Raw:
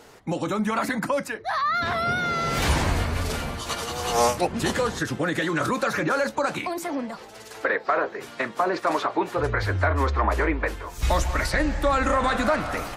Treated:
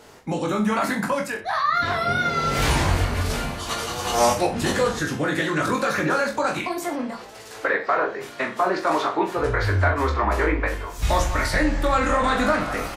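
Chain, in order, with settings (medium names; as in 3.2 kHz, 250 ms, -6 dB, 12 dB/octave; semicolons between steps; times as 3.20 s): reverse bouncing-ball echo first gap 20 ms, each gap 1.1×, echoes 5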